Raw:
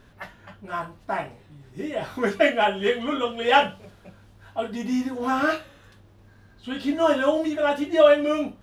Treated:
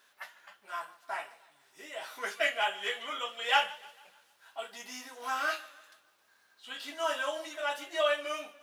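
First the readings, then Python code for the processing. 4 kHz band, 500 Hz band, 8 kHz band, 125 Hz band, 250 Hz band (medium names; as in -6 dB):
-3.5 dB, -14.5 dB, no reading, under -30 dB, -26.5 dB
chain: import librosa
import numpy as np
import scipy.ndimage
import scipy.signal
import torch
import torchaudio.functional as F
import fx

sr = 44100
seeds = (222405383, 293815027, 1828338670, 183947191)

y = scipy.signal.sosfilt(scipy.signal.butter(2, 900.0, 'highpass', fs=sr, output='sos'), x)
y = fx.high_shelf(y, sr, hz=4500.0, db=9.5)
y = fx.echo_warbled(y, sr, ms=150, feedback_pct=46, rate_hz=2.8, cents=60, wet_db=-20)
y = y * 10.0 ** (-6.5 / 20.0)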